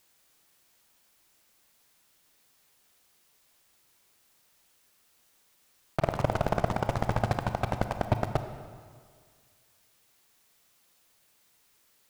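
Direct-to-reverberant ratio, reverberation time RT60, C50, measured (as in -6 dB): 8.0 dB, 1.9 s, 9.0 dB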